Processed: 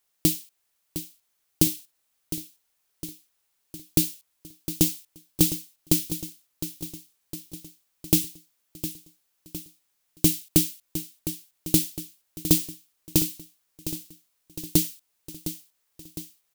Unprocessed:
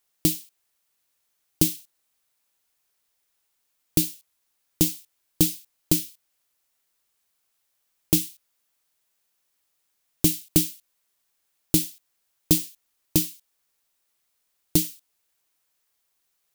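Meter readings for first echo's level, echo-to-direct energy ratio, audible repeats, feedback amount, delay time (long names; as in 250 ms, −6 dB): −11.5 dB, −10.0 dB, 5, 57%, 709 ms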